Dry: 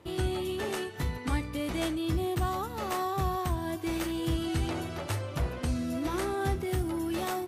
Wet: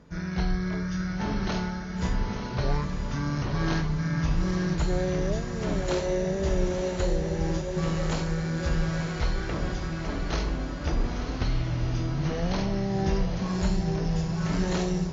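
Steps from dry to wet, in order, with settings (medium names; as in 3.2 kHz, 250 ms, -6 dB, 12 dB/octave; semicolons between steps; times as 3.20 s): echo that smears into a reverb 459 ms, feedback 55%, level -5 dB; wide varispeed 0.494×; trim +3 dB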